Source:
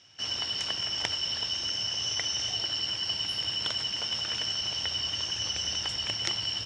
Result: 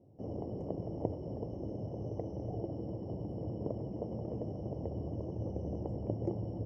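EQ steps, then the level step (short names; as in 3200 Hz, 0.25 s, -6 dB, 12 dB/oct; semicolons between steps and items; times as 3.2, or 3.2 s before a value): inverse Chebyshev low-pass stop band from 1400 Hz, stop band 50 dB; low shelf 68 Hz -12 dB; +11.5 dB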